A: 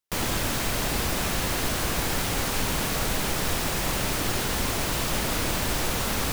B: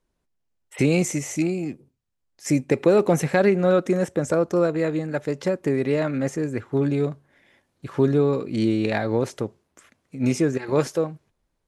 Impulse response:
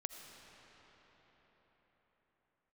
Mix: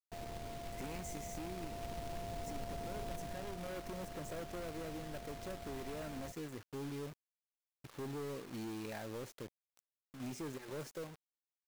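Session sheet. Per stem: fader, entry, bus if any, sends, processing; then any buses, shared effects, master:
1.67 s -17 dB -> 2.10 s -9.5 dB -> 3.13 s -9.5 dB -> 3.79 s -20.5 dB, 0.00 s, send -18.5 dB, sorted samples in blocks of 64 samples; elliptic low-pass 1 kHz
-19.5 dB, 0.00 s, send -23.5 dB, hard clipper -22.5 dBFS, distortion -6 dB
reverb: on, pre-delay 40 ms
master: companded quantiser 4-bit; compression, threshold -39 dBFS, peak gain reduction 8 dB

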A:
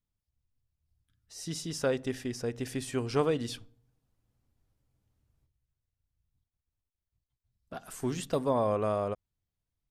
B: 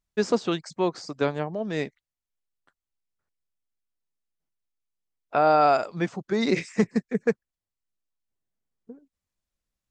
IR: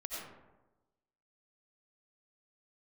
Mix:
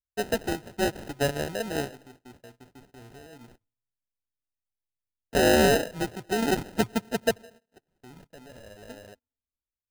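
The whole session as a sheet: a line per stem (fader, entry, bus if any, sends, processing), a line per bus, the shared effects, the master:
-12.5 dB, 0.00 s, no send, peak limiter -27 dBFS, peak gain reduction 11.5 dB
-4.5 dB, 0.00 s, send -22.5 dB, resonant low shelf 130 Hz +8 dB, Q 3; level rider gain up to 4 dB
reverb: on, RT60 1.1 s, pre-delay 50 ms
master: gate -51 dBFS, range -20 dB; sample-and-hold 39×

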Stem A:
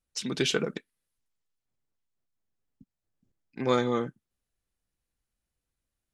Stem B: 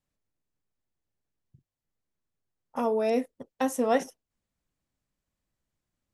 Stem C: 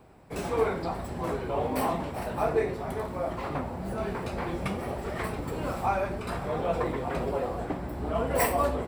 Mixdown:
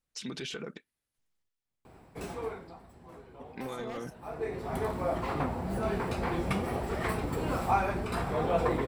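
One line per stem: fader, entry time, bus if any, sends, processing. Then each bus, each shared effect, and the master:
+0.5 dB, 0.00 s, bus A, no send, peaking EQ 2.1 kHz +3 dB 2.5 oct; random-step tremolo, depth 55%
-5.5 dB, 0.00 s, muted 1.49–3.31 s, bus A, no send, wavefolder -20 dBFS
+1.0 dB, 1.85 s, no bus, no send, band-stop 580 Hz, Q 12; auto duck -20 dB, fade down 0.85 s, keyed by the first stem
bus A: 0.0 dB, peak limiter -29.5 dBFS, peak gain reduction 18.5 dB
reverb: none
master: none

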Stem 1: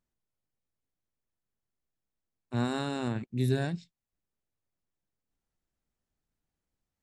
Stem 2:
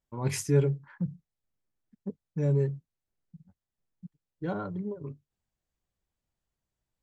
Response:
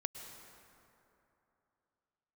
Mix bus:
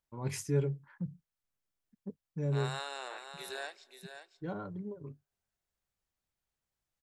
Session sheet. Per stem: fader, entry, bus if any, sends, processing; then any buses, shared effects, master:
-2.0 dB, 0.00 s, send -18 dB, echo send -8 dB, Bessel high-pass 780 Hz, order 8
-6.5 dB, 0.00 s, no send, no echo send, none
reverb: on, RT60 3.0 s, pre-delay 98 ms
echo: delay 530 ms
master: none

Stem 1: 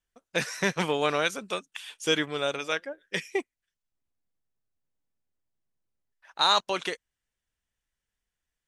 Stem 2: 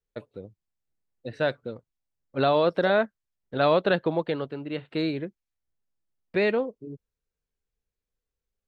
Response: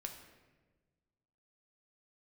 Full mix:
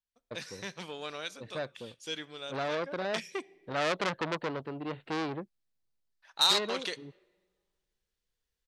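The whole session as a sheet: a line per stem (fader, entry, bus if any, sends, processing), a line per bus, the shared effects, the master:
2.71 s -16 dB -> 2.93 s -7 dB, 0.00 s, send -11.5 dB, peaking EQ 4.3 kHz +9.5 dB 0.86 oct
-1.5 dB, 0.15 s, no send, auto duck -7 dB, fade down 1.00 s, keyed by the first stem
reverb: on, RT60 1.3 s, pre-delay 4 ms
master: transformer saturation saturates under 4 kHz

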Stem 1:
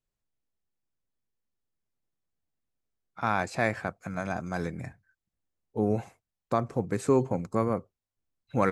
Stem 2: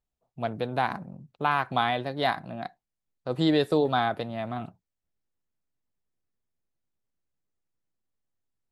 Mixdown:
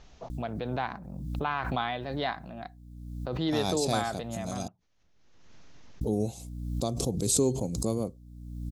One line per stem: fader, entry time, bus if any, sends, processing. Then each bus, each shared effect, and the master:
-2.0 dB, 0.30 s, muted 4.68–6.01 s, no send, FFT filter 330 Hz 0 dB, 690 Hz -4 dB, 1.8 kHz -23 dB, 3.5 kHz +11 dB, 9.5 kHz +14 dB; hum 60 Hz, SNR 17 dB
-5.5 dB, 0.00 s, no send, elliptic low-pass 6.4 kHz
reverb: none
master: swell ahead of each attack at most 37 dB/s

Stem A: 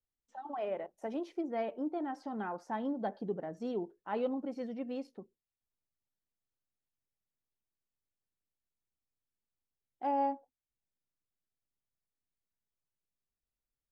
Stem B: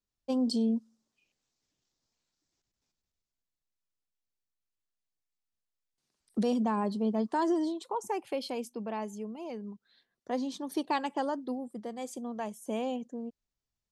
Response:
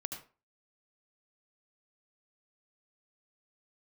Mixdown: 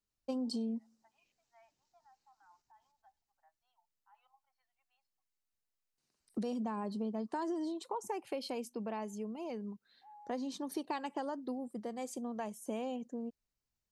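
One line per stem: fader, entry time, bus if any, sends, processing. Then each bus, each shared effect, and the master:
-12.0 dB, 0.00 s, no send, steep high-pass 810 Hz 48 dB/octave; peak limiter -39.5 dBFS, peak gain reduction 11.5 dB; spectral contrast expander 1.5:1
-1.0 dB, 0.00 s, no send, band-stop 3.4 kHz, Q 12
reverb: none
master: compression 4:1, threshold -35 dBFS, peak gain reduction 8.5 dB

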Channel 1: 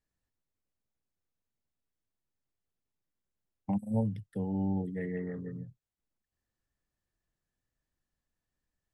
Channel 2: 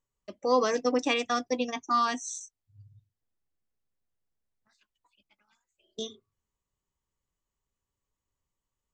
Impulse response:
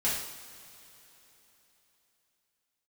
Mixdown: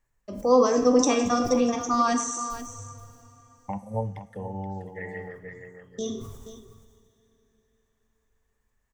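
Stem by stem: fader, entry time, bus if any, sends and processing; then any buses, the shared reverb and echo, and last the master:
-0.5 dB, 0.00 s, send -21 dB, echo send -10 dB, graphic EQ 125/250/500/1000/2000 Hz -4/-11/+5/+9/+10 dB; auto duck -9 dB, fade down 1.95 s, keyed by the second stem
+0.5 dB, 0.00 s, send -9.5 dB, echo send -9.5 dB, high-order bell 2.7 kHz -9.5 dB; decay stretcher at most 55 dB/s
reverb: on, pre-delay 3 ms
echo: delay 477 ms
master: bass shelf 110 Hz +9 dB

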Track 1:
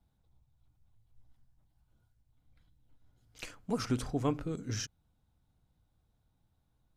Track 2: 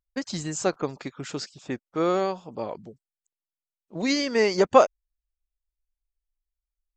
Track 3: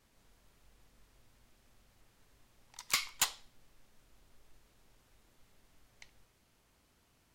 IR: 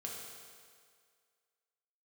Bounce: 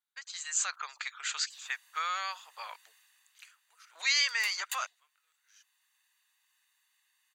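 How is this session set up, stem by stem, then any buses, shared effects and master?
-4.0 dB, 0.00 s, no bus, no send, echo send -7.5 dB, compression 3:1, threshold -45 dBFS, peak gain reduction 15 dB
-7.5 dB, 0.00 s, bus A, no send, no echo send, none
2.89 s -6.5 dB -> 3.60 s -17.5 dB, 1.50 s, bus A, no send, no echo send, comb 1.1 ms, depth 86%
bus A: 0.0 dB, level rider gain up to 14.5 dB; peak limiter -12.5 dBFS, peak gain reduction 11.5 dB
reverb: none
echo: delay 767 ms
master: inverse Chebyshev high-pass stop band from 220 Hz, stop band 80 dB; band-stop 5.3 kHz, Q 5.3

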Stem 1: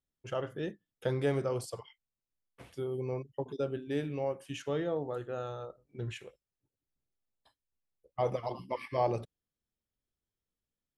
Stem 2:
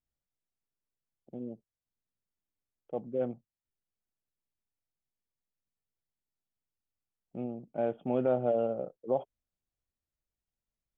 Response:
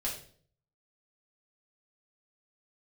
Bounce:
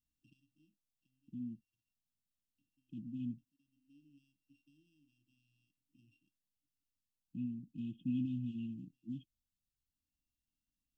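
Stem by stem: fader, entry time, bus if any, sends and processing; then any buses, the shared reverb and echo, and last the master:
-12.5 dB, 0.00 s, no send, sorted samples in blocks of 16 samples; band-pass filter 570 Hz, Q 4; three bands compressed up and down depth 100%; auto duck -14 dB, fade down 0.85 s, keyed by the second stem
-1.0 dB, 0.00 s, no send, none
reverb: none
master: brick-wall FIR band-stop 320–2500 Hz

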